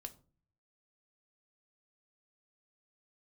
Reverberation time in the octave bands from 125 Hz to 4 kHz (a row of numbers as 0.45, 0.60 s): 0.90, 0.65, 0.45, 0.35, 0.25, 0.25 s